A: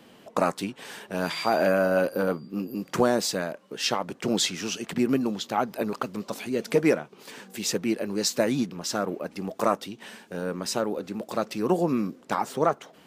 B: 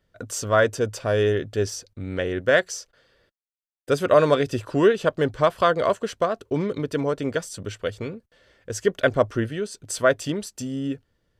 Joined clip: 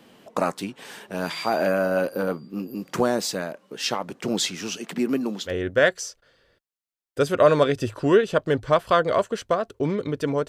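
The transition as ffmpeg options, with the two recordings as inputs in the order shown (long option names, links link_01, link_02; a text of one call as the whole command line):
ffmpeg -i cue0.wav -i cue1.wav -filter_complex "[0:a]asettb=1/sr,asplit=3[link_01][link_02][link_03];[link_01]atrim=end=4.794[link_04];[link_02]atrim=start=4.79:end=5.53,asetpts=PTS-STARTPTS,afade=type=in:duration=0.004:curve=qsin,afade=type=out:start_time=0.736:duration=0.004:curve=qsin,highpass=frequency=160:width=0.5412,highpass=frequency=160:width=1.3066[link_05];[link_03]atrim=start=5.526[link_06];[link_04][link_05]acrossfade=duration=0.004:curve1=hsin:curve2=qsin[link_07];[link_07][link_06]acrossfade=duration=0.004:curve1=qsin:curve2=hsin,apad=whole_dur=10.48,atrim=end=10.48,atrim=end=5.53,asetpts=PTS-STARTPTS[link_08];[1:a]atrim=start=2.16:end=7.19,asetpts=PTS-STARTPTS[link_09];[link_08][link_09]acrossfade=duration=0.08:curve1=tri:curve2=tri" out.wav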